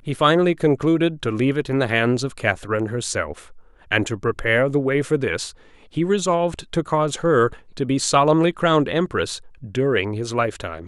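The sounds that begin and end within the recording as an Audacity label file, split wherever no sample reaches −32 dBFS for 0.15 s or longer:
3.910000	5.510000	sound
5.950000	7.560000	sound
7.770000	9.380000	sound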